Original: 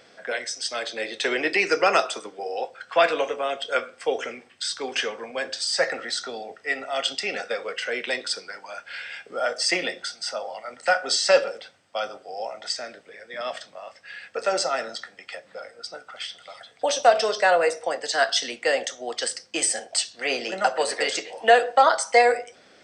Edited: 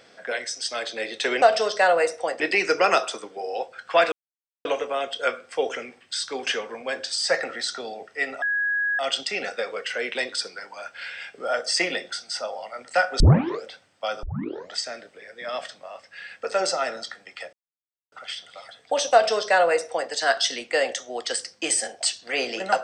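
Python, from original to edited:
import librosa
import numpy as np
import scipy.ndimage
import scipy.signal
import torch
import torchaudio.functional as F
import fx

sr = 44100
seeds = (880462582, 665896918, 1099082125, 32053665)

y = fx.edit(x, sr, fx.insert_silence(at_s=3.14, length_s=0.53),
    fx.insert_tone(at_s=6.91, length_s=0.57, hz=1660.0, db=-21.0),
    fx.tape_start(start_s=11.12, length_s=0.44),
    fx.tape_start(start_s=12.15, length_s=0.51),
    fx.silence(start_s=15.45, length_s=0.59),
    fx.duplicate(start_s=17.05, length_s=0.98, to_s=1.42), tone=tone)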